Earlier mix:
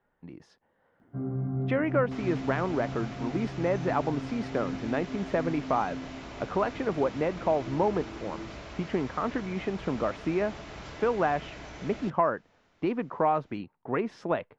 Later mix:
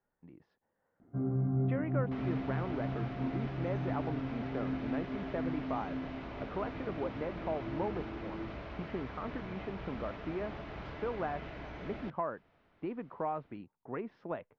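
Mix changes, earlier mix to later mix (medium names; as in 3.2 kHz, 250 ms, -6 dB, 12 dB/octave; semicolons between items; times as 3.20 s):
speech -9.5 dB; master: add distance through air 310 m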